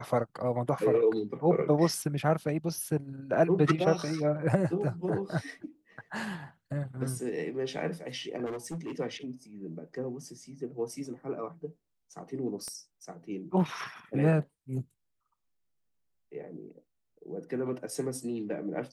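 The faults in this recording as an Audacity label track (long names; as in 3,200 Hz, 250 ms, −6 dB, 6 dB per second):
8.450000	8.920000	clipping −33.5 dBFS
12.680000	12.680000	click −28 dBFS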